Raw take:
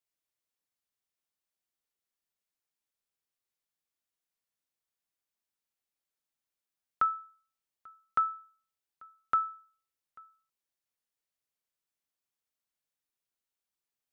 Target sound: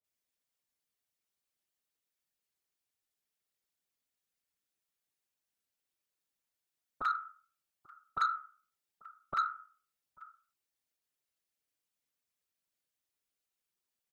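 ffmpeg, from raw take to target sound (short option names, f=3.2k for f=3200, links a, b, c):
-filter_complex "[0:a]afftfilt=real='hypot(re,im)*cos(2*PI*random(0))':imag='hypot(re,im)*sin(2*PI*random(1))':win_size=512:overlap=0.75,acrossover=split=1000[a][b];[b]adelay=40[c];[a][c]amix=inputs=2:normalize=0,asoftclip=type=tanh:threshold=-30.5dB,volume=7.5dB"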